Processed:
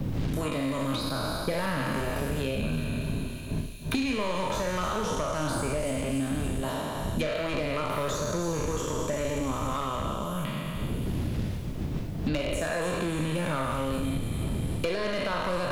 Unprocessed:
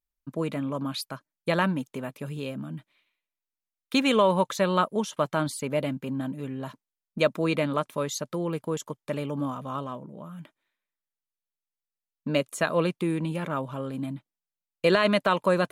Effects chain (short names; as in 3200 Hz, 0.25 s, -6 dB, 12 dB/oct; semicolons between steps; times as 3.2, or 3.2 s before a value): spectral trails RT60 1.58 s; wind noise 100 Hz -33 dBFS; 2.6–4.13 ripple EQ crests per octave 1.5, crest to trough 9 dB; compressor 3:1, threshold -26 dBFS, peak gain reduction 10 dB; soft clip -23.5 dBFS, distortion -15 dB; on a send: thin delay 0.285 s, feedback 43%, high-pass 5500 Hz, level -7 dB; on the sum: Schroeder reverb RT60 0.37 s, combs from 26 ms, DRR 7 dB; three-band squash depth 100%